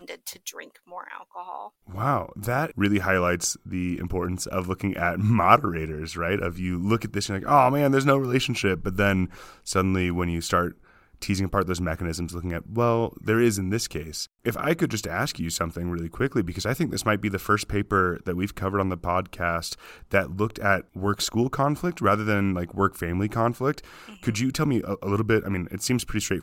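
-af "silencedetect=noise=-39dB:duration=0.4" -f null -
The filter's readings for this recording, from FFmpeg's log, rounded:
silence_start: 10.72
silence_end: 11.22 | silence_duration: 0.50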